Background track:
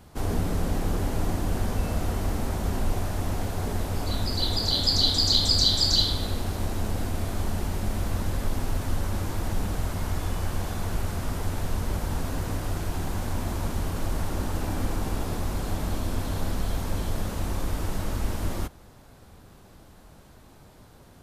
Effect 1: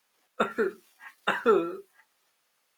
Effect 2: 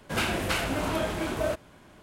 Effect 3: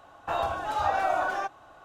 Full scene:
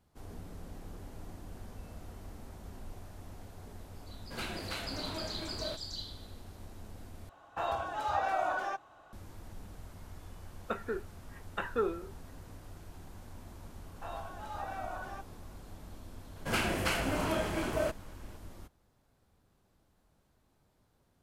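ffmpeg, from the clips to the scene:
-filter_complex "[2:a]asplit=2[s0][s1];[3:a]asplit=2[s2][s3];[0:a]volume=0.1[s4];[1:a]lowpass=f=2900:p=1[s5];[s1]bandreject=f=3700:w=12[s6];[s4]asplit=2[s7][s8];[s7]atrim=end=7.294[s9];[s2]atrim=end=1.84,asetpts=PTS-STARTPTS,volume=0.531[s10];[s8]atrim=start=9.126[s11];[s0]atrim=end=2.02,asetpts=PTS-STARTPTS,volume=0.237,afade=t=in:d=0.004:c=hsin,afade=t=out:st=2.016:d=0.004:c=hsin,adelay=185661S[s12];[s5]atrim=end=2.77,asetpts=PTS-STARTPTS,volume=0.355,afade=t=in:d=0.004:c=hsin,afade=t=out:st=2.766:d=0.004:c=hsin,adelay=10300[s13];[s3]atrim=end=1.84,asetpts=PTS-STARTPTS,volume=0.188,afade=t=in:d=0.004:c=hsin,afade=t=out:st=1.836:d=0.004:c=hsin,adelay=13740[s14];[s6]atrim=end=2.02,asetpts=PTS-STARTPTS,volume=0.668,afade=t=in:d=0.004:c=hsin,afade=t=out:st=2.016:d=0.004:c=hsin,adelay=721476S[s15];[s9][s10]acrossfade=d=0.004:c1=hsin:c2=hsin[s16];[s16][s11]acrossfade=d=0.004:c1=hsin:c2=hsin[s17];[s17][s12][s13][s14][s15]amix=inputs=5:normalize=0"

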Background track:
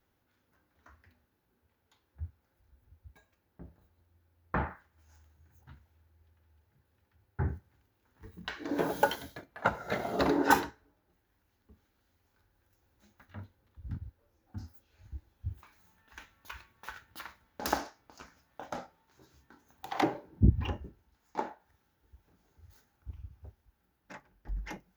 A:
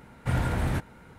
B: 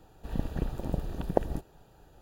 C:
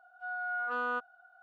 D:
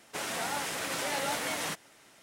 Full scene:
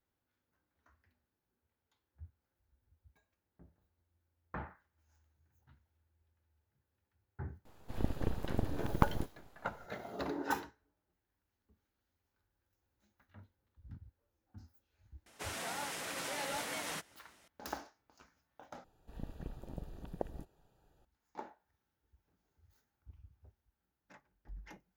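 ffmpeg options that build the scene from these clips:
-filter_complex "[2:a]asplit=2[s0][s1];[0:a]volume=0.266[s2];[s0]aeval=exprs='abs(val(0))':c=same[s3];[4:a]acompressor=mode=upward:threshold=0.00501:ratio=2.5:attack=0.65:release=917:knee=2.83:detection=peak[s4];[s2]asplit=2[s5][s6];[s5]atrim=end=18.844[s7];[s1]atrim=end=2.21,asetpts=PTS-STARTPTS,volume=0.211[s8];[s6]atrim=start=21.046[s9];[s3]atrim=end=2.21,asetpts=PTS-STARTPTS,volume=0.794,afade=t=in:d=0.004:c=hsin,afade=t=out:st=2.206:d=0.004:c=hsin,adelay=7650[s10];[s4]atrim=end=2.22,asetpts=PTS-STARTPTS,volume=0.447,afade=t=in:d=0.004:c=hsin,afade=t=out:st=2.216:d=0.004:c=hsin,adelay=15260[s11];[s7][s8]acrossfade=d=0.004:c1=hsin:c2=hsin[s12];[s12][s9]acrossfade=d=0.004:c1=hsin:c2=hsin[s13];[s13][s10][s11]amix=inputs=3:normalize=0"

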